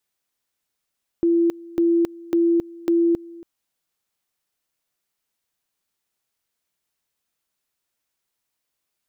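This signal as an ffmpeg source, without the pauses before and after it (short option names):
-f lavfi -i "aevalsrc='pow(10,(-14.5-22*gte(mod(t,0.55),0.27))/20)*sin(2*PI*338*t)':d=2.2:s=44100"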